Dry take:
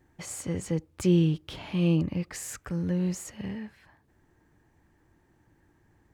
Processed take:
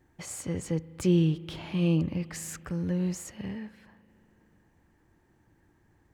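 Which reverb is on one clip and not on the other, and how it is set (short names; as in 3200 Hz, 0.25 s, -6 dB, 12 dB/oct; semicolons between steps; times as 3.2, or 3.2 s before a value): spring tank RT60 3.6 s, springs 37 ms, chirp 55 ms, DRR 18 dB; gain -1 dB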